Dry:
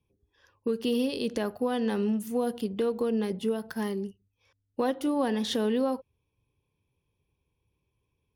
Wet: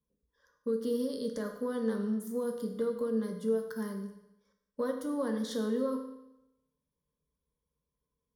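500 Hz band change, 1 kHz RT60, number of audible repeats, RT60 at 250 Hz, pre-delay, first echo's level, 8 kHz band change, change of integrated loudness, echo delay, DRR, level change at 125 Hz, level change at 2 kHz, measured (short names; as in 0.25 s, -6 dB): -3.5 dB, 0.90 s, none, 0.85 s, 7 ms, none, -5.0 dB, -4.5 dB, none, 4.0 dB, n/a, -7.0 dB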